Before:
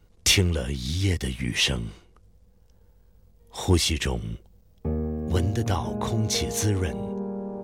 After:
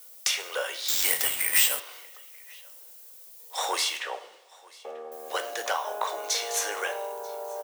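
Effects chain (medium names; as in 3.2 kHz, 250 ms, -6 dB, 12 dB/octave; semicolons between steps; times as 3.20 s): elliptic high-pass 530 Hz, stop band 80 dB; dynamic bell 1.3 kHz, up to +6 dB, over -46 dBFS, Q 1.2; compression 12:1, threshold -29 dBFS, peak gain reduction 14.5 dB; added noise violet -54 dBFS; 3.97–5.12 s: tape spacing loss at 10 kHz 25 dB; delay 938 ms -24 dB; two-slope reverb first 0.53 s, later 2.2 s, from -19 dB, DRR 7.5 dB; 0.88–1.80 s: careless resampling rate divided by 4×, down none, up zero stuff; trim +4.5 dB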